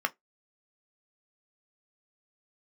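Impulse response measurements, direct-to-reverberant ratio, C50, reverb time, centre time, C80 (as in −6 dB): 6.5 dB, 30.0 dB, 0.15 s, 3 ms, 41.5 dB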